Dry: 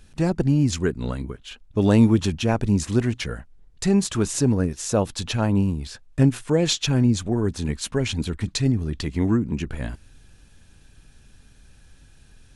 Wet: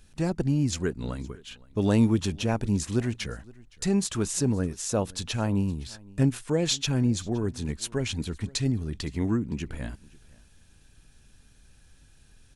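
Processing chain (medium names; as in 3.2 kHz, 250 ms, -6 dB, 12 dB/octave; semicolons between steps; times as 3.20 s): treble shelf 4.9 kHz +4.5 dB; on a send: delay 516 ms -23.5 dB; 6.68–8.44 s: on the sum: tape noise reduction on one side only decoder only; trim -5.5 dB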